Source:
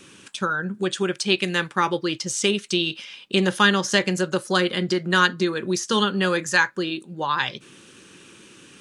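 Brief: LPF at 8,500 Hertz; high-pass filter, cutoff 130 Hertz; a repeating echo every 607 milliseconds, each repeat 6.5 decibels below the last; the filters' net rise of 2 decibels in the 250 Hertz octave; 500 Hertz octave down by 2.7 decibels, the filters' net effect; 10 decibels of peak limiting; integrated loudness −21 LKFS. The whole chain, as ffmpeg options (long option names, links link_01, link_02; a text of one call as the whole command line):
ffmpeg -i in.wav -af "highpass=130,lowpass=8500,equalizer=frequency=250:width_type=o:gain=7,equalizer=frequency=500:width_type=o:gain=-8,alimiter=limit=-14dB:level=0:latency=1,aecho=1:1:607|1214|1821|2428|3035|3642:0.473|0.222|0.105|0.0491|0.0231|0.0109,volume=3.5dB" out.wav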